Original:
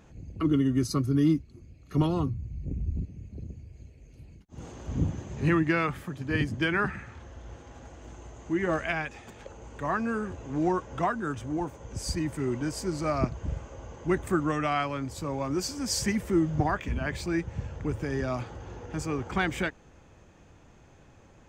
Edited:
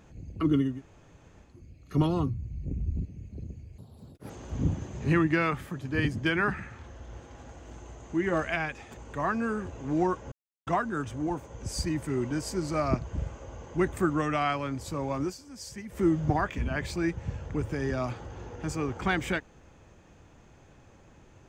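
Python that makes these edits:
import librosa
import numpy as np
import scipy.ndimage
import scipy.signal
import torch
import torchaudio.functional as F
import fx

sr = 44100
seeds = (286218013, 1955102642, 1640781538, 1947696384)

y = fx.edit(x, sr, fx.room_tone_fill(start_s=0.7, length_s=0.81, crossfade_s=0.24),
    fx.speed_span(start_s=3.78, length_s=0.88, speed=1.7),
    fx.cut(start_s=9.33, length_s=0.29),
    fx.insert_silence(at_s=10.97, length_s=0.35),
    fx.fade_down_up(start_s=15.53, length_s=0.78, db=-13.5, fade_s=0.12), tone=tone)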